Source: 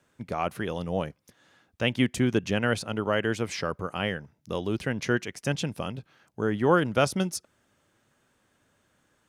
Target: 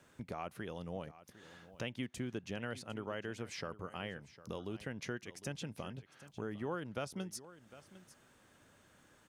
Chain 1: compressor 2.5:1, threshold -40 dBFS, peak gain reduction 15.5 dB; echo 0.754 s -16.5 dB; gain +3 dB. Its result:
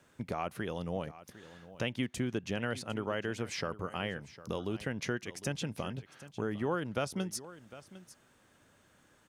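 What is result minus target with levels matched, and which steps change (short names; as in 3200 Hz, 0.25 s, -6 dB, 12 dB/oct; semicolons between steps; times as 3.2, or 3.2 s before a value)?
compressor: peak gain reduction -6.5 dB
change: compressor 2.5:1, threshold -51 dBFS, peak gain reduction 22.5 dB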